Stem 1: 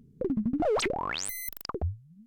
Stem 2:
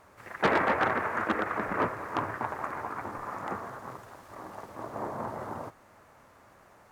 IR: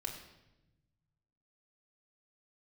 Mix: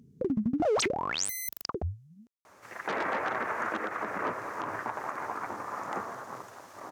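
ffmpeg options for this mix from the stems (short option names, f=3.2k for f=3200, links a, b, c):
-filter_complex "[0:a]volume=0dB[a];[1:a]lowshelf=f=160:g=-10,alimiter=limit=-22.5dB:level=0:latency=1:release=112,adelay=2450,volume=1dB[b];[a][b]amix=inputs=2:normalize=0,highpass=81,equalizer=f=6.1k:w=2:g=6"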